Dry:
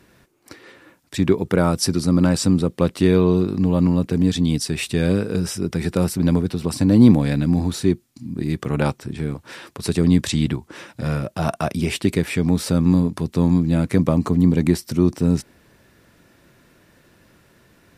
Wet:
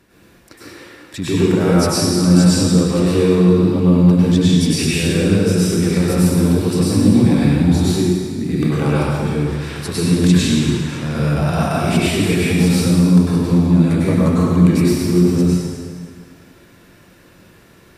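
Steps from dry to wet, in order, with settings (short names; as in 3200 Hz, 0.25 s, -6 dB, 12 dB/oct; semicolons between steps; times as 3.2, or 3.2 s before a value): in parallel at -2 dB: negative-ratio compressor -21 dBFS; on the sum: reverb RT60 1.9 s, pre-delay 93 ms, DRR -9 dB; gain -9 dB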